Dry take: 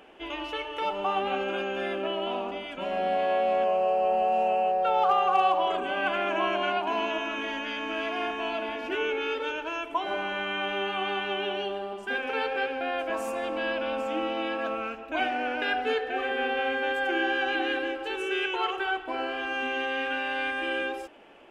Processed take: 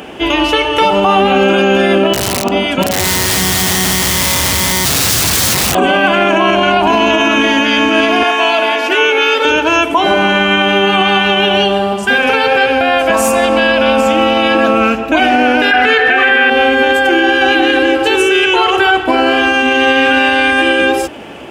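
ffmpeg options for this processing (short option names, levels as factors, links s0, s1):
-filter_complex "[0:a]asettb=1/sr,asplit=3[s0][s1][s2];[s0]atrim=end=2.134[s3];[s1]atrim=start=2.13:end=5.75,asetpts=PTS-STARTPTS,afade=t=in:d=0.004:c=qsin,afade=t=out:st=3.616:d=0.004:c=qsin,aeval=exprs='(mod(15*val(0)+1,2)-1)/15':c=same[s4];[s2]atrim=start=5.746[s5];[s3][s4]acrossfade=d=0.004:c1=hsin:c2=qsin[s6];[s6][s5]acrossfade=d=0.004:c1=qsin:c2=hsin,asettb=1/sr,asplit=3[s7][s8][s9];[s7]atrim=end=6.524[s10];[s8]atrim=start=6.52:end=7.14,asetpts=PTS-STARTPTS,afade=t=in:d=0.004:c=qsin,afade=t=out:st=0.616:d=0.004:c=qsin,aeval=exprs='val(0)+0.00112*(sin(2*PI*50*n/s)+sin(2*PI*2*50*n/s)/2+sin(2*PI*3*50*n/s)/3+sin(2*PI*4*50*n/s)/4+sin(2*PI*5*50*n/s)/5)':c=same[s11];[s9]atrim=start=7.136[s12];[s10][s11]acrossfade=d=0.004:c1=hsin:c2=qsin[s13];[s13][s12]acrossfade=d=0.004:c1=qsin:c2=hsin,asettb=1/sr,asplit=3[s14][s15][s16];[s14]atrim=end=8.234[s17];[s15]atrim=start=8.23:end=9.45,asetpts=PTS-STARTPTS,afade=t=in:d=0.004:c=qsin,afade=t=out:st=1.216:d=0.004:c=qsin,highpass=550[s18];[s16]atrim=start=9.446[s19];[s17][s18]acrossfade=d=0.004:c1=hsin:c2=qsin[s20];[s20][s19]acrossfade=d=0.004:c1=qsin:c2=hsin,asettb=1/sr,asplit=3[s21][s22][s23];[s21]atrim=end=11.014[s24];[s22]atrim=start=11.01:end=14.55,asetpts=PTS-STARTPTS,afade=t=in:d=0.004:c=qsin,afade=t=out:st=3.536:d=0.004:c=qsin,equalizer=f=330:w=2.1:g=-8.5[s25];[s23]atrim=start=14.546[s26];[s24][s25]acrossfade=d=0.004:c1=hsin:c2=qsin[s27];[s27][s26]acrossfade=d=0.004:c1=qsin:c2=hsin,asettb=1/sr,asplit=3[s28][s29][s30];[s28]atrim=end=15.714[s31];[s29]atrim=start=15.71:end=16.5,asetpts=PTS-STARTPTS,afade=t=in:d=0.004:c=qsin,afade=t=out:st=0.786:d=0.004:c=qsin,equalizer=f=1800:w=0.74:g=14.5[s32];[s30]atrim=start=16.496[s33];[s31][s32]acrossfade=d=0.004:c1=hsin:c2=qsin[s34];[s34][s33]acrossfade=d=0.004:c1=qsin:c2=hsin,highpass=f=62:w=0.5412,highpass=f=62:w=1.3066,bass=f=250:g=12,treble=f=4000:g=8,alimiter=level_in=12.6:limit=0.891:release=50:level=0:latency=1,volume=0.891"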